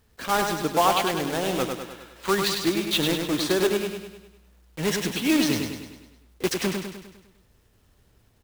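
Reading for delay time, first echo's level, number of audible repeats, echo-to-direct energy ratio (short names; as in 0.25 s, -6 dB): 0.101 s, -5.0 dB, 6, -3.5 dB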